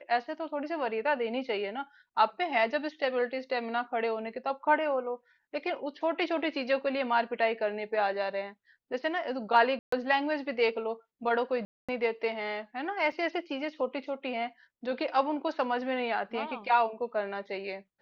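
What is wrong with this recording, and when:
9.79–9.92 s: dropout 134 ms
11.65–11.89 s: dropout 236 ms
13.12 s: dropout 2.4 ms

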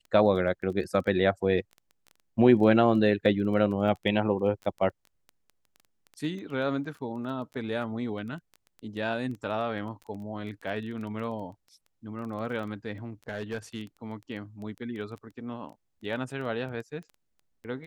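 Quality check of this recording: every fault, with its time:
crackle 11 per s -36 dBFS
13.28–13.82 s: clipped -27.5 dBFS

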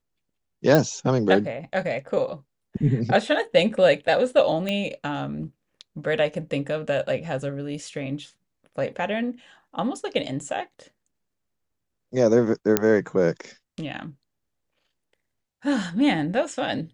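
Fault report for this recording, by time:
0.75 s: pop -6 dBFS
4.69 s: pop -14 dBFS
12.77 s: pop -3 dBFS

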